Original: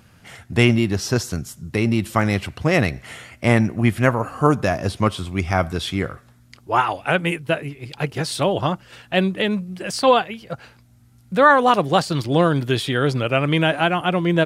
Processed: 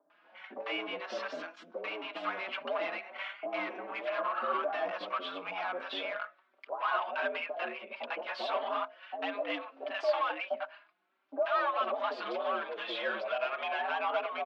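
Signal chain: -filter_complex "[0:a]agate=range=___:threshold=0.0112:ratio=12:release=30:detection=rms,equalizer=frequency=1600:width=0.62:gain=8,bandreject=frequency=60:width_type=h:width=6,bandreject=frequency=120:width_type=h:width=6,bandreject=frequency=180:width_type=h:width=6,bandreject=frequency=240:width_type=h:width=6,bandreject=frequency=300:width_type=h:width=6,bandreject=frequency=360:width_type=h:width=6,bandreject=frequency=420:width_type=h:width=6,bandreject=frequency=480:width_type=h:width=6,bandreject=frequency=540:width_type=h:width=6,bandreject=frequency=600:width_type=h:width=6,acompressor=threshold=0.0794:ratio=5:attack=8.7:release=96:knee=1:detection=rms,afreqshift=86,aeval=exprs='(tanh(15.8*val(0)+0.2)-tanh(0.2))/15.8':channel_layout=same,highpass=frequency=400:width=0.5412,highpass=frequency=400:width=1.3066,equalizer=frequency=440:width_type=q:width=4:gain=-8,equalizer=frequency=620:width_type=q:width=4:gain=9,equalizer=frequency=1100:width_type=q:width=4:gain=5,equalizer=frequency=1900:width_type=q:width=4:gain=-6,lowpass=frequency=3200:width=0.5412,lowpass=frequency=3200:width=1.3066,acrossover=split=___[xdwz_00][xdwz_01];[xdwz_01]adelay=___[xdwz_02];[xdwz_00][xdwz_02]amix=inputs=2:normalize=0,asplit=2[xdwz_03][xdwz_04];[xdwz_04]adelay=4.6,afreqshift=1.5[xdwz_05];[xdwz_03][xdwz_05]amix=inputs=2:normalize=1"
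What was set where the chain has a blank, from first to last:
0.355, 770, 100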